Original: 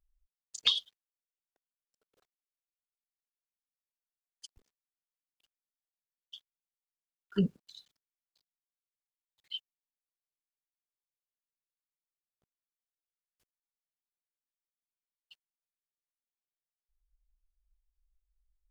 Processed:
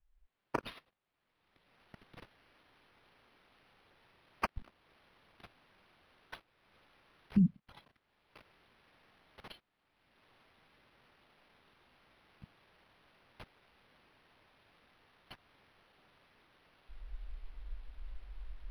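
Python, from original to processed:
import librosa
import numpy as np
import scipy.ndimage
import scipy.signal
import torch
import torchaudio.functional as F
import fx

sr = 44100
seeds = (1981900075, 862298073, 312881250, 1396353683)

y = fx.recorder_agc(x, sr, target_db=-17.5, rise_db_per_s=28.0, max_gain_db=30)
y = scipy.signal.sosfilt(scipy.signal.cheby2(4, 60, [600.0, 2400.0], 'bandstop', fs=sr, output='sos'), y)
y = np.interp(np.arange(len(y)), np.arange(len(y))[::6], y[::6])
y = F.gain(torch.from_numpy(y), 1.5).numpy()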